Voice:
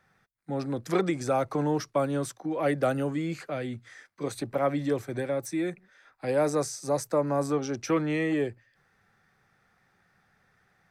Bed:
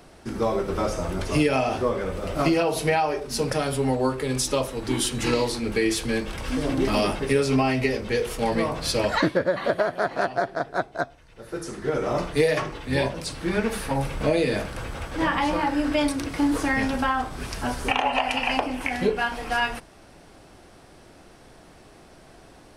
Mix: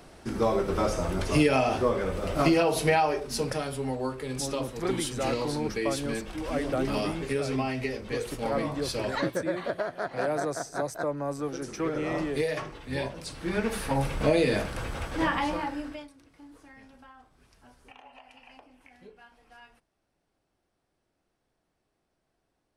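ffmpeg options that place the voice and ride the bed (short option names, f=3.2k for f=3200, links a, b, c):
-filter_complex "[0:a]adelay=3900,volume=-5dB[a];[1:a]volume=6dB,afade=t=out:st=3.05:d=0.67:silence=0.446684,afade=t=in:st=13.2:d=0.85:silence=0.446684,afade=t=out:st=15.06:d=1.02:silence=0.0421697[b];[a][b]amix=inputs=2:normalize=0"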